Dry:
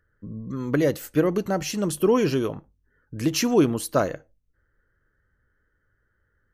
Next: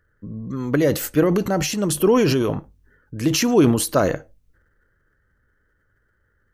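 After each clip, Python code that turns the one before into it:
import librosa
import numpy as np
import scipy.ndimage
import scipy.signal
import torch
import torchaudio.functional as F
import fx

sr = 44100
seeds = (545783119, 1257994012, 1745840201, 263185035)

y = fx.transient(x, sr, attack_db=0, sustain_db=8)
y = y * 10.0 ** (3.0 / 20.0)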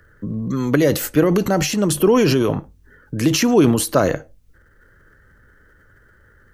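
y = fx.band_squash(x, sr, depth_pct=40)
y = y * 10.0 ** (2.5 / 20.0)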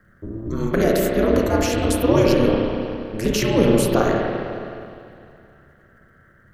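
y = fx.rev_spring(x, sr, rt60_s=2.5, pass_ms=(31, 51), chirp_ms=40, drr_db=-2.0)
y = y * np.sin(2.0 * np.pi * 110.0 * np.arange(len(y)) / sr)
y = y * 10.0 ** (-2.5 / 20.0)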